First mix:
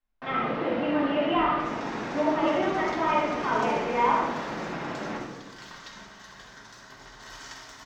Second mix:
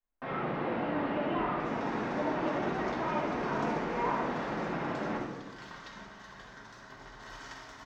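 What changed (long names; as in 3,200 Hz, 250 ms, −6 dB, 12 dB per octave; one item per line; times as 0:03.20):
speech −9.5 dB
master: add high-shelf EQ 3,400 Hz −11.5 dB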